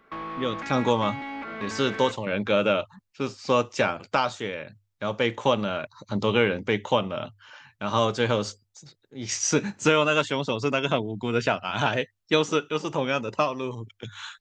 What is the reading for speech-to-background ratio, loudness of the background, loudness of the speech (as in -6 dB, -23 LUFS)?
9.0 dB, -35.0 LUFS, -26.0 LUFS